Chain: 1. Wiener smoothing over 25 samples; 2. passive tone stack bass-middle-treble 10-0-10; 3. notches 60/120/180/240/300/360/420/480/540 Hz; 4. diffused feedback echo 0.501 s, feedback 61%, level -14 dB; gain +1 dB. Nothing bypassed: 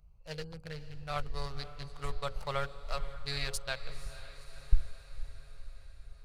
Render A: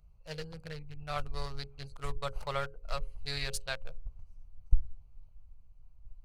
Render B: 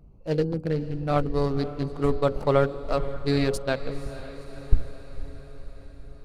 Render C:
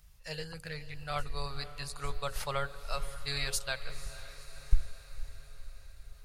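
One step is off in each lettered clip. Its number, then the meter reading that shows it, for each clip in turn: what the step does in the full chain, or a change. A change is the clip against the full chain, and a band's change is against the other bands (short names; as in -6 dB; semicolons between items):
4, echo-to-direct -12.0 dB to none; 2, 250 Hz band +15.0 dB; 1, 8 kHz band +5.5 dB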